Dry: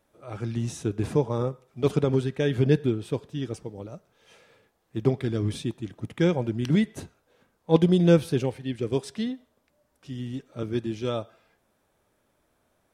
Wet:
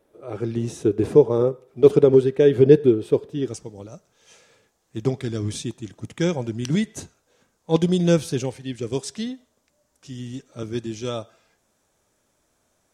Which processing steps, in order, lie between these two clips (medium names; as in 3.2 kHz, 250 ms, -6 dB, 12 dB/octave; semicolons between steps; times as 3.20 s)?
peaking EQ 410 Hz +12.5 dB 1 oct, from 3.48 s 6.7 kHz